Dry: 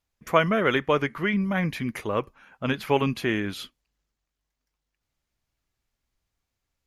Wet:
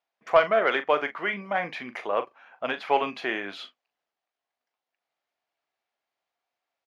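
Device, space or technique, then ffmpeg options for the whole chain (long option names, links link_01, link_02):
intercom: -filter_complex "[0:a]highpass=490,lowpass=3700,equalizer=frequency=710:width_type=o:width=0.47:gain=9,asoftclip=type=tanh:threshold=-6.5dB,asplit=2[link_01][link_02];[link_02]adelay=40,volume=-11dB[link_03];[link_01][link_03]amix=inputs=2:normalize=0"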